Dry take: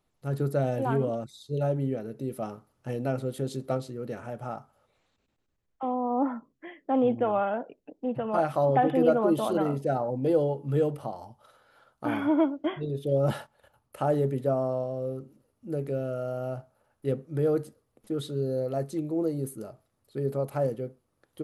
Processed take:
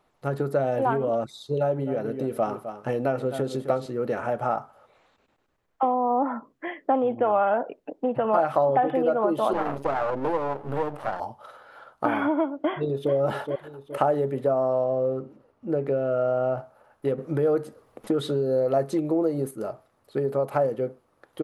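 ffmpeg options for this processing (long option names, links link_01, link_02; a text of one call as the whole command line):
ffmpeg -i in.wav -filter_complex "[0:a]asettb=1/sr,asplit=3[link_01][link_02][link_03];[link_01]atrim=end=1.534[link_04];[link_02]atrim=start=1.53:end=3.86,asetpts=PTS-STARTPTS,afade=type=in:duration=0.004:curve=qsin,afade=type=out:start_time=2.326:duration=0.004:curve=qsin,aecho=1:1:259:0.224,atrim=end_sample=102753[link_05];[link_03]atrim=start=3.856[link_06];[link_04][link_05]acrossfade=duration=0.004:curve1=hsin:curve2=qsin[link_07];[link_07][link_06]acrossfade=duration=0.004:curve1=qsin:curve2=hsin,asettb=1/sr,asplit=3[link_08][link_09][link_10];[link_08]atrim=end=9.534[link_11];[link_09]atrim=start=9.53:end=11.2,asetpts=PTS-STARTPTS,afade=type=in:duration=0.004:curve=qsin,afade=type=out:start_time=1.666:duration=0.004:curve=qsin,aeval=exprs='max(val(0),0)':channel_layout=same[link_12];[link_10]atrim=start=11.196[link_13];[link_11][link_12]acrossfade=duration=0.004:curve1=hsin:curve2=qsin[link_14];[link_14][link_13]acrossfade=duration=0.004:curve1=qsin:curve2=hsin,asplit=2[link_15][link_16];[link_16]afade=type=in:start_time=12.54:duration=0.01,afade=type=out:start_time=13.13:duration=0.01,aecho=0:1:420|840|1260|1680:0.281838|0.112735|0.0450941|0.0180377[link_17];[link_15][link_17]amix=inputs=2:normalize=0,asettb=1/sr,asplit=3[link_18][link_19][link_20];[link_18]atrim=end=14.844[link_21];[link_19]atrim=start=14.84:end=16.58,asetpts=PTS-STARTPTS,afade=type=in:duration=0.004:curve=qsin,afade=type=out:start_time=1.736:duration=0.004:curve=qsin,aemphasis=mode=reproduction:type=50fm[link_22];[link_20]atrim=start=16.576[link_23];[link_21][link_22]acrossfade=duration=0.004:curve1=hsin:curve2=qsin[link_24];[link_24][link_23]acrossfade=duration=0.004:curve1=qsin:curve2=hsin,asplit=3[link_25][link_26][link_27];[link_25]atrim=end=17.182[link_28];[link_26]atrim=start=17.178:end=19.512,asetpts=PTS-STARTPTS,volume=7dB[link_29];[link_27]atrim=start=19.508[link_30];[link_28][link_29]acrossfade=duration=0.004:curve1=hsin:curve2=hsin[link_31];[link_31][link_30]acrossfade=duration=0.004:curve1=hsin:curve2=hsin,acompressor=threshold=-31dB:ratio=6,equalizer=frequency=950:width=0.32:gain=13,volume=1dB" out.wav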